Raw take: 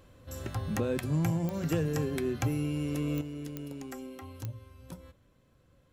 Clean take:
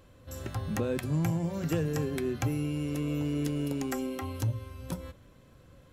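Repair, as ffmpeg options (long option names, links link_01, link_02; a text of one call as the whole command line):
ffmpeg -i in.wav -af "adeclick=threshold=4,asetnsamples=nb_out_samples=441:pad=0,asendcmd='3.21 volume volume 9dB',volume=0dB" out.wav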